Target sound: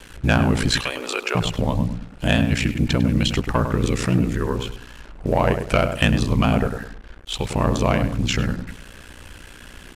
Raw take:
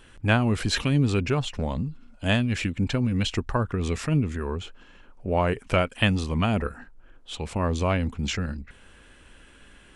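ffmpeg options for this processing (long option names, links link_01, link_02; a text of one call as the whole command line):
ffmpeg -i in.wav -filter_complex "[0:a]asettb=1/sr,asplit=3[link_01][link_02][link_03];[link_01]atrim=end=0.714[link_04];[link_02]atrim=start=0.71:end=1.35,asetpts=PTS-STARTPTS,afade=type=in:duration=0.004:curve=qsin,afade=type=out:start_time=0.636:duration=0.004:curve=qsin,highpass=frequency=520:width=0.5412,highpass=frequency=520:width=1.3066[link_05];[link_03]atrim=start=1.346[link_06];[link_04][link_05]acrossfade=duration=0.004:curve1=hsin:curve2=qsin[link_07];[link_07][link_06]acrossfade=duration=0.004:curve1=qsin:curve2=hsin,asplit=2[link_08][link_09];[link_09]acompressor=threshold=-33dB:ratio=4,volume=-1dB[link_10];[link_08][link_10]amix=inputs=2:normalize=0,asoftclip=type=tanh:threshold=-12.5dB,asplit=2[link_11][link_12];[link_12]adelay=101,lowpass=frequency=1500:poles=1,volume=-7dB,asplit=2[link_13][link_14];[link_14]adelay=101,lowpass=frequency=1500:poles=1,volume=0.32,asplit=2[link_15][link_16];[link_16]adelay=101,lowpass=frequency=1500:poles=1,volume=0.32,asplit=2[link_17][link_18];[link_18]adelay=101,lowpass=frequency=1500:poles=1,volume=0.32[link_19];[link_11][link_13][link_15][link_17][link_19]amix=inputs=5:normalize=0,aeval=exprs='val(0)*sin(2*PI*30*n/s)':channel_layout=same,acrusher=bits=7:mix=0:aa=0.5,aresample=32000,aresample=44100,volume=6.5dB" out.wav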